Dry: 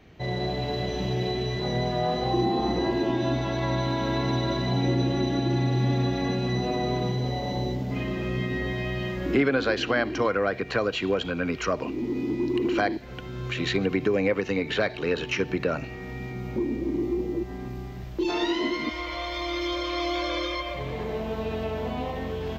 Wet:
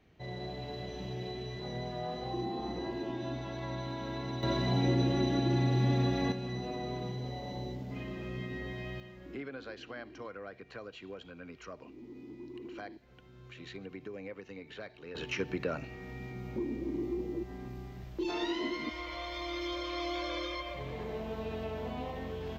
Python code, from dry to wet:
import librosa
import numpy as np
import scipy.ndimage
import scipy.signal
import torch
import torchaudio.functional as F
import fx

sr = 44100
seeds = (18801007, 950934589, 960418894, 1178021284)

y = fx.gain(x, sr, db=fx.steps((0.0, -12.0), (4.43, -4.0), (6.32, -11.0), (9.0, -20.0), (15.15, -8.0)))